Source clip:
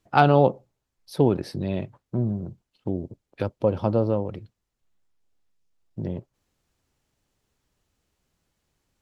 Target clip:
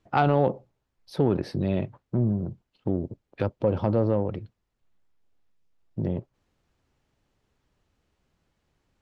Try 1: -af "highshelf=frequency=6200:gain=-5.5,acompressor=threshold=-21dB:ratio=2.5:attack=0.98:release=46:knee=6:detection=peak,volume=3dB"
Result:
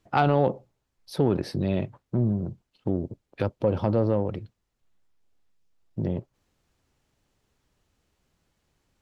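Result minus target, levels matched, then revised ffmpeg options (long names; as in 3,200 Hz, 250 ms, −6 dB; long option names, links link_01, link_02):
8,000 Hz band +6.0 dB
-af "highshelf=frequency=6200:gain=-16,acompressor=threshold=-21dB:ratio=2.5:attack=0.98:release=46:knee=6:detection=peak,volume=3dB"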